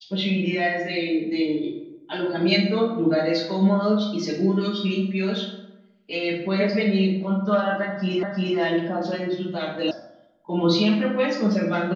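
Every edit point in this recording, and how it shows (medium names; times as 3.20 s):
8.23 s: repeat of the last 0.35 s
9.91 s: sound stops dead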